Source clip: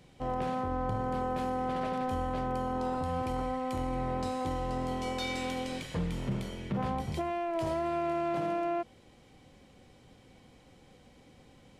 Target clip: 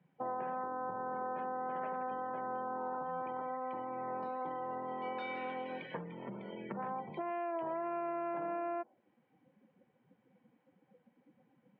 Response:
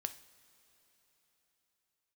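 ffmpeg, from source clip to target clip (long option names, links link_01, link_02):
-af "afftdn=noise_reduction=21:noise_floor=-45,acompressor=threshold=-40dB:ratio=6,highpass=frequency=200:width=0.5412,highpass=frequency=200:width=1.3066,equalizer=frequency=260:width_type=q:width=4:gain=-7,equalizer=frequency=920:width_type=q:width=4:gain=6,equalizer=frequency=1600:width_type=q:width=4:gain=6,lowpass=frequency=2600:width=0.5412,lowpass=frequency=2600:width=1.3066,volume=4dB"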